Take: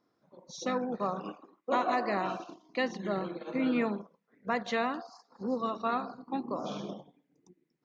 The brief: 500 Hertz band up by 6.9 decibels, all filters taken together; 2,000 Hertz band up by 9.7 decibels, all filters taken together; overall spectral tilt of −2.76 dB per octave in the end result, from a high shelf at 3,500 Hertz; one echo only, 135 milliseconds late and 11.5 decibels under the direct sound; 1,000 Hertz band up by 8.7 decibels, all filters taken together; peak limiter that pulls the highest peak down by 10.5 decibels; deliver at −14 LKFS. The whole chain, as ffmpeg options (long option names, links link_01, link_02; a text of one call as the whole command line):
ffmpeg -i in.wav -af "equalizer=frequency=500:width_type=o:gain=5.5,equalizer=frequency=1000:width_type=o:gain=7,equalizer=frequency=2000:width_type=o:gain=7,highshelf=frequency=3500:gain=8,alimiter=limit=-19dB:level=0:latency=1,aecho=1:1:135:0.266,volume=16.5dB" out.wav